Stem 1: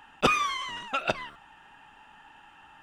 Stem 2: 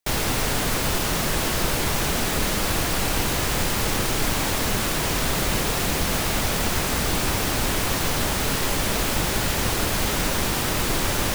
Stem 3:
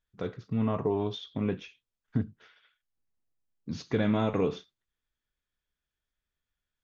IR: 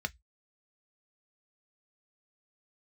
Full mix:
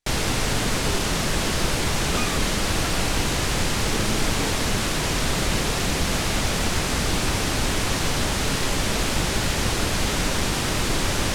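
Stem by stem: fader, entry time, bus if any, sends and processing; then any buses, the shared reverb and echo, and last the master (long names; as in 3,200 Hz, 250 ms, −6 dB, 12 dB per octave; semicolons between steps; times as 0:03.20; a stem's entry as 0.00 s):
−6.5 dB, 1.90 s, no send, no processing
+1.5 dB, 0.00 s, no send, low-pass filter 9,000 Hz 12 dB per octave
−5.5 dB, 0.00 s, no send, no processing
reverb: not used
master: parametric band 850 Hz −2.5 dB 2.5 octaves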